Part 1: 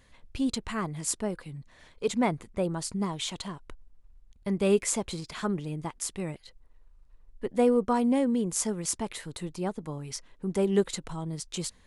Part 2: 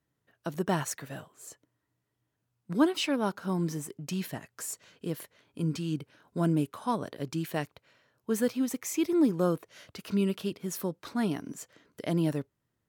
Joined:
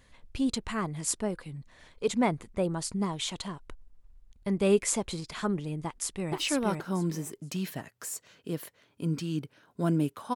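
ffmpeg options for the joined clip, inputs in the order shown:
-filter_complex "[0:a]apad=whole_dur=10.35,atrim=end=10.35,atrim=end=6.332[a];[1:a]atrim=start=2.898:end=6.92[b];[a][b]acrossfade=d=0.004:c1=hsin:c2=hsin,asplit=2[c][d];[d]afade=t=in:st=5.84:d=0.01,afade=t=out:st=6.33:d=0.01,aecho=0:1:470|940|1410:0.794328|0.158866|0.0317731[e];[c][e]amix=inputs=2:normalize=0"

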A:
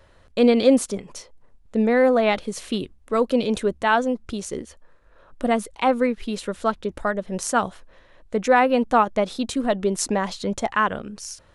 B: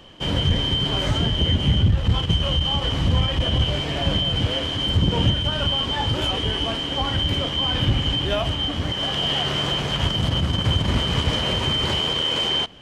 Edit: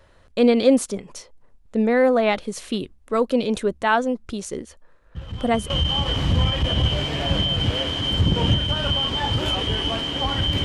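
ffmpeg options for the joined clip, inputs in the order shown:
-filter_complex "[1:a]asplit=2[a][b];[0:a]apad=whole_dur=10.64,atrim=end=10.64,atrim=end=5.702[c];[b]atrim=start=2.458:end=7.4[d];[a]atrim=start=1.91:end=2.46,asetpts=PTS-STARTPTS,volume=-13dB,afade=t=in:d=0.004:c=hsin,afade=t=out:st=0.546:d=0.004:c=hsin,adelay=5150[e];[c][d]acrossfade=d=0.004:c1=hsin:c2=hsin[f];[f][e]amix=inputs=2:normalize=0"

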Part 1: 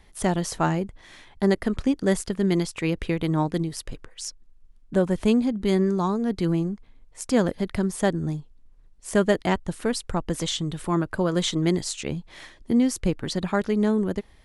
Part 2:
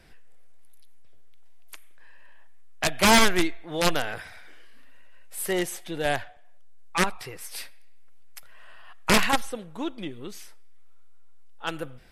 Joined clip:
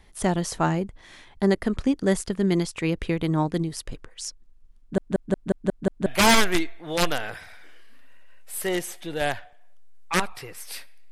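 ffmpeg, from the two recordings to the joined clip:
-filter_complex "[0:a]apad=whole_dur=11.11,atrim=end=11.11,asplit=7[a][b][c][d][e][f][g];[a]atrim=end=4.982[h];[b]atrim=start=4.798:end=4.982[i];[c]atrim=start=4.798:end=4.982[j];[d]atrim=start=4.798:end=4.982[k];[e]atrim=start=4.798:end=4.982[l];[f]atrim=start=4.798:end=4.982[m];[g]atrim=start=4.798:end=4.982[n];[1:a]atrim=start=2.898:end=7.95[o];[h][i]acrossfade=d=0.004:c1=hsin:c2=hsin[p];[p][j]acrossfade=d=0.004:c1=hsin:c2=hsin[q];[q][k]acrossfade=d=0.004:c1=hsin:c2=hsin[r];[r][l]acrossfade=d=0.004:c1=hsin:c2=hsin[s];[s][m]acrossfade=d=0.004:c1=hsin:c2=hsin[t];[t][n]acrossfade=d=0.004:c1=hsin:c2=hsin[u];[u][o]acrossfade=d=0.004:c1=hsin:c2=hsin"

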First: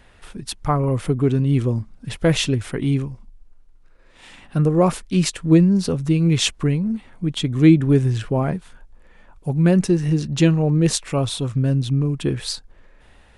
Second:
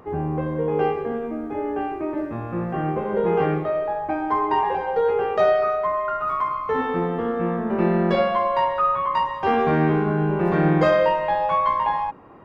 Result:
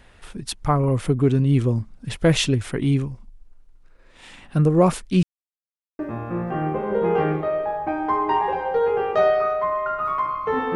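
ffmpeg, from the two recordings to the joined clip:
-filter_complex "[0:a]apad=whole_dur=10.75,atrim=end=10.75,asplit=2[a][b];[a]atrim=end=5.23,asetpts=PTS-STARTPTS,afade=t=out:st=5.226:d=0.004:c=hsin[c];[b]atrim=start=5.23:end=5.99,asetpts=PTS-STARTPTS,volume=0[d];[1:a]atrim=start=2.21:end=6.97,asetpts=PTS-STARTPTS,afade=t=in:d=0.004:c=hsin[e];[c][d][e]concat=n=3:v=0:a=1"

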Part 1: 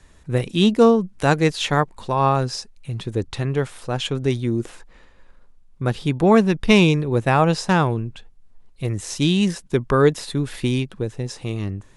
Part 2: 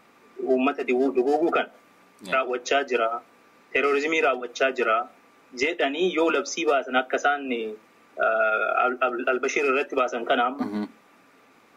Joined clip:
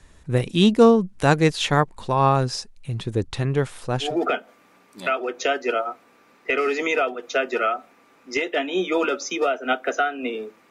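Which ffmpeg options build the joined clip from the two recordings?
-filter_complex "[0:a]apad=whole_dur=10.7,atrim=end=10.7,atrim=end=4.17,asetpts=PTS-STARTPTS[a];[1:a]atrim=start=1.25:end=7.96,asetpts=PTS-STARTPTS[b];[a][b]acrossfade=d=0.18:c1=tri:c2=tri"

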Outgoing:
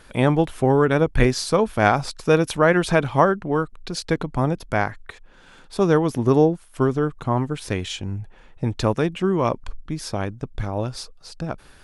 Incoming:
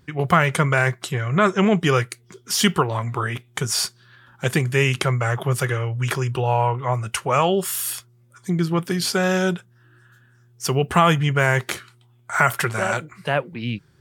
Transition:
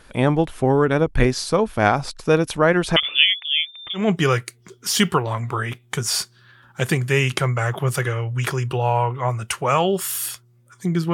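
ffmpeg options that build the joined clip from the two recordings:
-filter_complex "[0:a]asettb=1/sr,asplit=3[a][b][c];[a]atrim=end=2.964[d];[b]atrim=start=2.96:end=4.09,asetpts=PTS-STARTPTS,afade=t=in:d=0.004:c=qsin,afade=t=out:st=1.126:d=0.004:c=qsin,lowpass=f=3.1k:t=q:w=0.5098,lowpass=f=3.1k:t=q:w=0.6013,lowpass=f=3.1k:t=q:w=0.9,lowpass=f=3.1k:t=q:w=2.563,afreqshift=-3600[e];[c]atrim=start=4.086[f];[d][e]acrossfade=d=0.004:c1=hsin:c2=qsin[g];[g][f]acrossfade=d=0.004:c1=qsin:c2=hsin,apad=whole_dur=11.13,atrim=end=11.13,atrim=end=4.09,asetpts=PTS-STARTPTS[h];[1:a]atrim=start=1.57:end=8.77,asetpts=PTS-STARTPTS[i];[h][i]acrossfade=d=0.16:c1=tri:c2=tri"

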